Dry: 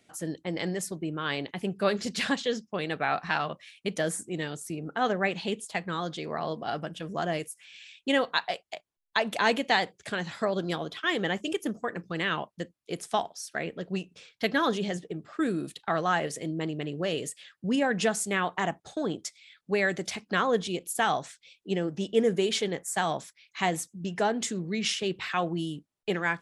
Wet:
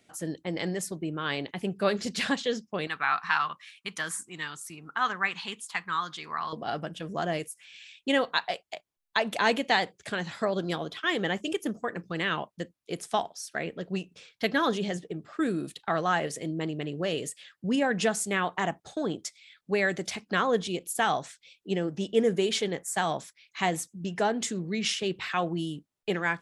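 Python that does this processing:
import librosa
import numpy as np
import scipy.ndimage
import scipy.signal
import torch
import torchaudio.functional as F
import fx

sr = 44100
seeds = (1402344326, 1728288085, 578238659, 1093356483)

y = fx.low_shelf_res(x, sr, hz=800.0, db=-10.0, q=3.0, at=(2.87, 6.53))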